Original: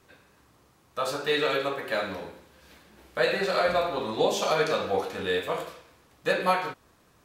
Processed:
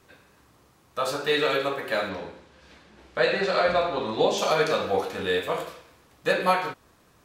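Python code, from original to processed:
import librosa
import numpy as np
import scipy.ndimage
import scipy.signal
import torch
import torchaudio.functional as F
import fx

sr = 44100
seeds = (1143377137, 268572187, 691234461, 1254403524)

y = fx.lowpass(x, sr, hz=6300.0, slope=12, at=(2.09, 4.38))
y = y * 10.0 ** (2.0 / 20.0)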